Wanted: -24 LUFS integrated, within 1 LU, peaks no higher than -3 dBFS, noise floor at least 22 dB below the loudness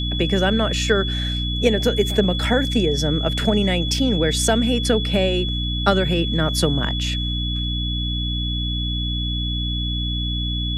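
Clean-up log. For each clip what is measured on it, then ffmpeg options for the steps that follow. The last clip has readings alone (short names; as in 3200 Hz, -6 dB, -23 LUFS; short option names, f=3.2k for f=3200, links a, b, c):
hum 60 Hz; harmonics up to 300 Hz; hum level -22 dBFS; steady tone 3400 Hz; tone level -26 dBFS; loudness -20.5 LUFS; peak -3.0 dBFS; loudness target -24.0 LUFS
-> -af "bandreject=f=60:t=h:w=4,bandreject=f=120:t=h:w=4,bandreject=f=180:t=h:w=4,bandreject=f=240:t=h:w=4,bandreject=f=300:t=h:w=4"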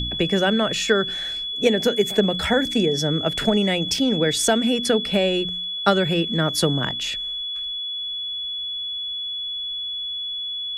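hum none; steady tone 3400 Hz; tone level -26 dBFS
-> -af "bandreject=f=3.4k:w=30"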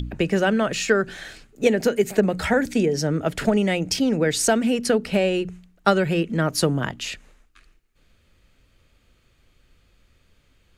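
steady tone none; loudness -22.0 LUFS; peak -3.5 dBFS; loudness target -24.0 LUFS
-> -af "volume=-2dB"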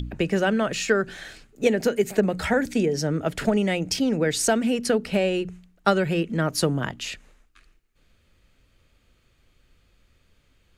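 loudness -24.0 LUFS; peak -5.5 dBFS; noise floor -64 dBFS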